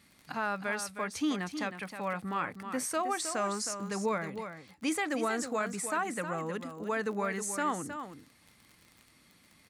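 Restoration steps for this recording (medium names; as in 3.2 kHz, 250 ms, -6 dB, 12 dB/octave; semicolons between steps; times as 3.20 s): de-click; inverse comb 315 ms -9 dB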